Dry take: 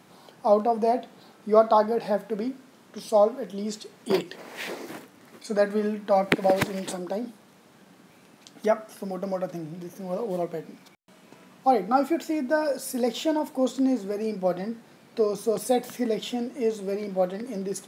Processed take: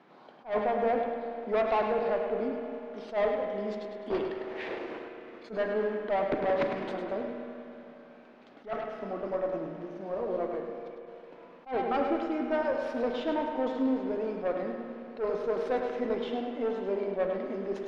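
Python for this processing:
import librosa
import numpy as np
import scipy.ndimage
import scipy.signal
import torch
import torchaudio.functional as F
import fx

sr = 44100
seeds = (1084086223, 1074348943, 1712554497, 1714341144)

y = fx.cvsd(x, sr, bps=64000)
y = scipy.signal.sosfilt(scipy.signal.butter(2, 290.0, 'highpass', fs=sr, output='sos'), y)
y = fx.high_shelf(y, sr, hz=4000.0, db=-8.0)
y = fx.tube_stage(y, sr, drive_db=23.0, bias=0.3)
y = fx.air_absorb(y, sr, metres=260.0)
y = fx.echo_feedback(y, sr, ms=103, feedback_pct=44, wet_db=-7)
y = fx.rev_spring(y, sr, rt60_s=3.3, pass_ms=(30, 37), chirp_ms=75, drr_db=5.0)
y = fx.attack_slew(y, sr, db_per_s=240.0)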